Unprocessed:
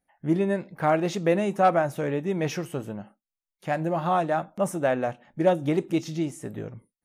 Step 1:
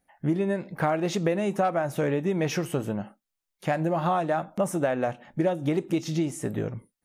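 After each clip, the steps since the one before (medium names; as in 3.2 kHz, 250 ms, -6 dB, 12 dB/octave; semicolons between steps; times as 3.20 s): compression 6:1, threshold -28 dBFS, peak gain reduction 13 dB; trim +6 dB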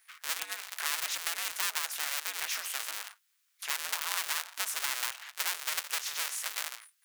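cycle switcher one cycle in 2, inverted; high-pass 1.4 kHz 24 dB/octave; spectrum-flattening compressor 2:1; trim +4 dB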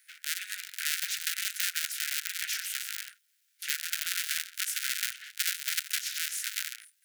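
cycle switcher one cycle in 3, muted; steep high-pass 1.4 kHz 96 dB/octave; trim +3.5 dB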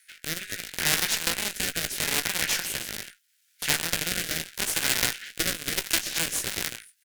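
Chebyshev shaper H 8 -17 dB, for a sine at -7.5 dBFS; rotary cabinet horn 0.75 Hz, later 8 Hz, at 5.63 s; doubling 18 ms -10 dB; trim +7 dB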